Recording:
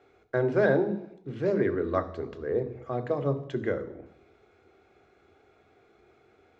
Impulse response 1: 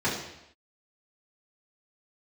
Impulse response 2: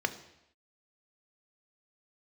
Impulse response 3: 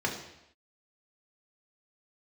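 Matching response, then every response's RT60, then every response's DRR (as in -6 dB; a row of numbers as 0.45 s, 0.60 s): 2; no single decay rate, no single decay rate, no single decay rate; -9.5 dB, 8.5 dB, -1.0 dB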